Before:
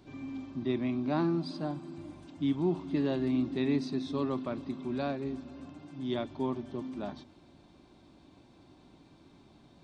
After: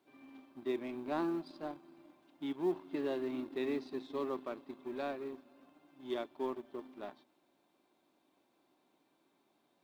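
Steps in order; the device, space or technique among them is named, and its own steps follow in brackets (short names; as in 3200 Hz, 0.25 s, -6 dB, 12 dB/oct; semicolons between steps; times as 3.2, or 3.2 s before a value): dynamic EQ 390 Hz, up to +5 dB, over -44 dBFS, Q 2.7; phone line with mismatched companding (BPF 380–3600 Hz; G.711 law mismatch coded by A); gain -2.5 dB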